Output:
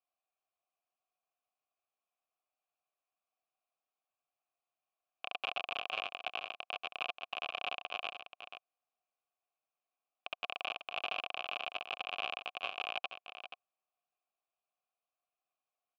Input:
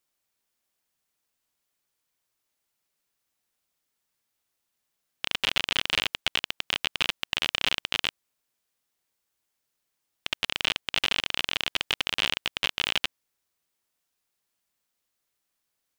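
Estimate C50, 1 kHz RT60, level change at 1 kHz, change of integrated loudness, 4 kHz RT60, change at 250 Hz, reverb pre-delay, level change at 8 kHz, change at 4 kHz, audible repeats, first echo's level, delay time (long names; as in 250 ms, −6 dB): no reverb audible, no reverb audible, −3.5 dB, −12.0 dB, no reverb audible, −18.0 dB, no reverb audible, below −25 dB, −15.0 dB, 1, −10.0 dB, 481 ms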